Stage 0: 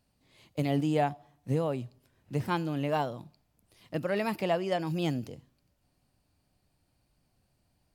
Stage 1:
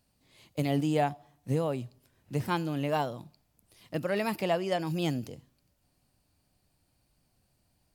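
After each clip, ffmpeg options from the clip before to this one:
-af "highshelf=f=5100:g=5.5"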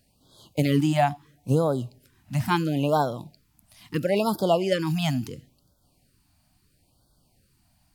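-af "afftfilt=real='re*(1-between(b*sr/1024,400*pow(2300/400,0.5+0.5*sin(2*PI*0.74*pts/sr))/1.41,400*pow(2300/400,0.5+0.5*sin(2*PI*0.74*pts/sr))*1.41))':imag='im*(1-between(b*sr/1024,400*pow(2300/400,0.5+0.5*sin(2*PI*0.74*pts/sr))/1.41,400*pow(2300/400,0.5+0.5*sin(2*PI*0.74*pts/sr))*1.41))':win_size=1024:overlap=0.75,volume=2.24"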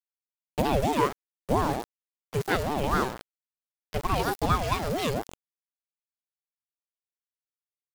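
-af "aeval=exprs='val(0)*gte(abs(val(0)),0.0398)':c=same,aeval=exprs='val(0)*sin(2*PI*430*n/s+430*0.4/4.4*sin(2*PI*4.4*n/s))':c=same"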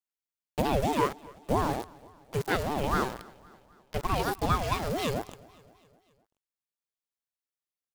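-af "aecho=1:1:258|516|774|1032:0.0708|0.0404|0.023|0.0131,volume=0.794"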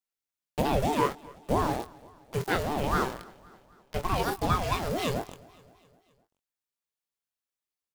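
-filter_complex "[0:a]asplit=2[s0][s1];[s1]adelay=23,volume=0.376[s2];[s0][s2]amix=inputs=2:normalize=0"

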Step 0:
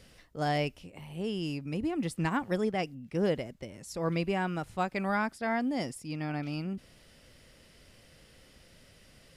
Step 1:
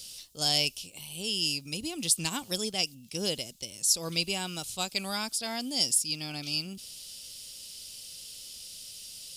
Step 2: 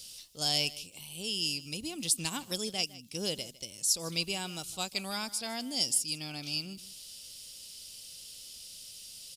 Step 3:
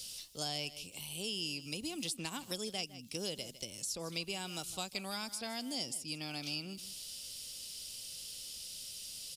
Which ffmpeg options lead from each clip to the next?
-af "aexciter=amount=15.5:drive=5.6:freq=2900,volume=0.501"
-af "aecho=1:1:156:0.119,volume=0.708"
-filter_complex "[0:a]acrossover=split=240|2600[s0][s1][s2];[s0]acompressor=threshold=0.00224:ratio=4[s3];[s1]acompressor=threshold=0.00708:ratio=4[s4];[s2]acompressor=threshold=0.00708:ratio=4[s5];[s3][s4][s5]amix=inputs=3:normalize=0,volume=1.26"

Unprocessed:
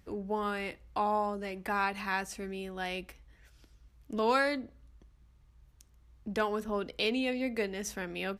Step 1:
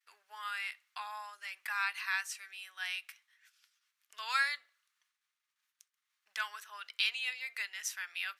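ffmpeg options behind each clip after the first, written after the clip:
-af "agate=range=0.0224:threshold=0.002:ratio=3:detection=peak,highpass=f=1400:w=0.5412,highpass=f=1400:w=1.3066,volume=1.26"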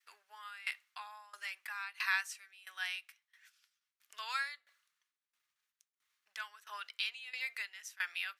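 -af "aeval=exprs='val(0)*pow(10,-20*if(lt(mod(1.5*n/s,1),2*abs(1.5)/1000),1-mod(1.5*n/s,1)/(2*abs(1.5)/1000),(mod(1.5*n/s,1)-2*abs(1.5)/1000)/(1-2*abs(1.5)/1000))/20)':c=same,volume=1.88"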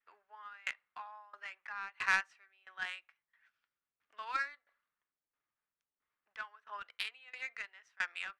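-af "adynamicsmooth=sensitivity=2:basefreq=1200,volume=1.68"

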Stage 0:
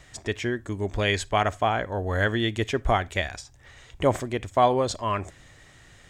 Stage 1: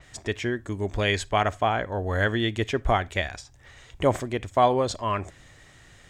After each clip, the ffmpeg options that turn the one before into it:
-af "adynamicequalizer=threshold=0.00562:dfrequency=5400:dqfactor=0.7:tfrequency=5400:tqfactor=0.7:attack=5:release=100:ratio=0.375:range=2:mode=cutabove:tftype=highshelf"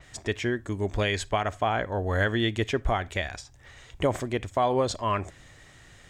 -af "alimiter=limit=0.211:level=0:latency=1:release=136"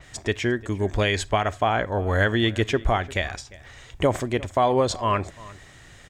-filter_complex "[0:a]asplit=2[s0][s1];[s1]adelay=349.9,volume=0.1,highshelf=f=4000:g=-7.87[s2];[s0][s2]amix=inputs=2:normalize=0,volume=1.58"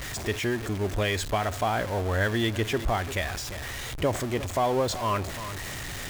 -af "aeval=exprs='val(0)+0.5*0.0631*sgn(val(0))':c=same,volume=0.473"

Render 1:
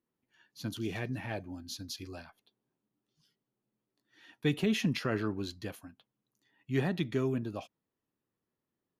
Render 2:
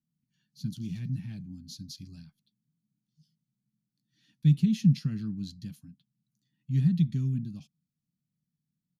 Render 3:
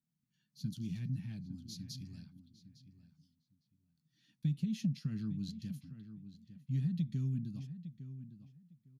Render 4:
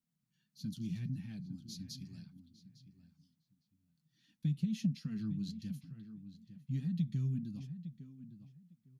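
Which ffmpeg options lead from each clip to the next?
-af "firequalizer=gain_entry='entry(110,0);entry(150,15);entry(360,-20);entry(550,-29);entry(1500,-19);entry(4400,-2);entry(12000,-7)':delay=0.05:min_phase=1"
-filter_complex "[0:a]acompressor=threshold=0.0447:ratio=5,asplit=2[s0][s1];[s1]adelay=856,lowpass=f=2500:p=1,volume=0.251,asplit=2[s2][s3];[s3]adelay=856,lowpass=f=2500:p=1,volume=0.19[s4];[s0][s2][s4]amix=inputs=3:normalize=0,volume=0.631"
-af "flanger=delay=3.7:depth=2.4:regen=-45:speed=1.6:shape=sinusoidal,volume=1.58"

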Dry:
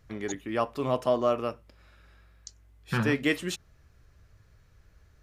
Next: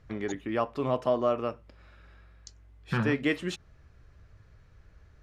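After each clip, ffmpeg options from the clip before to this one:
-filter_complex "[0:a]aemphasis=mode=reproduction:type=50fm,asplit=2[s0][s1];[s1]acompressor=threshold=0.02:ratio=6,volume=0.891[s2];[s0][s2]amix=inputs=2:normalize=0,volume=0.708"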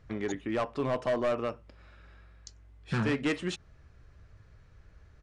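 -af "asoftclip=type=hard:threshold=0.0631,aresample=22050,aresample=44100"

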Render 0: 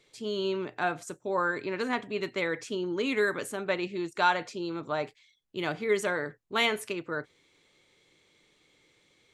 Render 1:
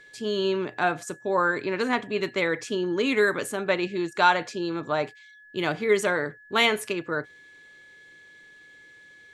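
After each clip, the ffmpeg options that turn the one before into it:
-af "aeval=exprs='val(0)+0.002*sin(2*PI*1700*n/s)':c=same,volume=1.78"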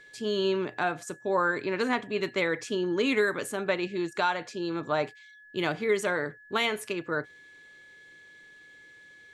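-af "alimiter=limit=0.211:level=0:latency=1:release=497,volume=0.841"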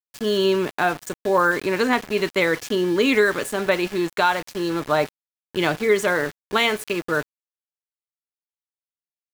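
-af "aeval=exprs='val(0)*gte(abs(val(0)),0.0126)':c=same,volume=2.37"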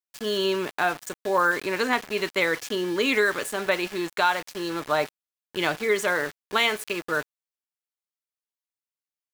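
-af "lowshelf=f=420:g=-8,volume=0.841"

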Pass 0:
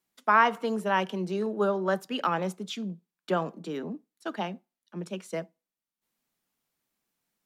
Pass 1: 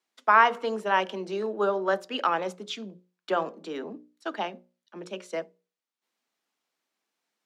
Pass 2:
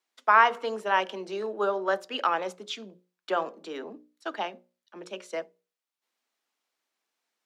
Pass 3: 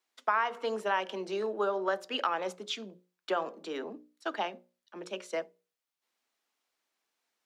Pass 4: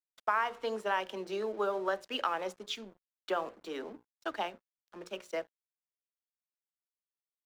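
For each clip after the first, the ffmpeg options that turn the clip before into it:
-filter_complex "[0:a]acrossover=split=250 7300:gain=0.0708 1 0.224[s0][s1][s2];[s0][s1][s2]amix=inputs=3:normalize=0,bandreject=f=60:t=h:w=6,bandreject=f=120:t=h:w=6,bandreject=f=180:t=h:w=6,bandreject=f=240:t=h:w=6,bandreject=f=300:t=h:w=6,bandreject=f=360:t=h:w=6,bandreject=f=420:t=h:w=6,bandreject=f=480:t=h:w=6,bandreject=f=540:t=h:w=6,bandreject=f=600:t=h:w=6,volume=1.33"
-af "equalizer=f=130:t=o:w=2:g=-9"
-af "acompressor=threshold=0.0447:ratio=3"
-af "aeval=exprs='sgn(val(0))*max(abs(val(0))-0.00211,0)':c=same,volume=0.841"

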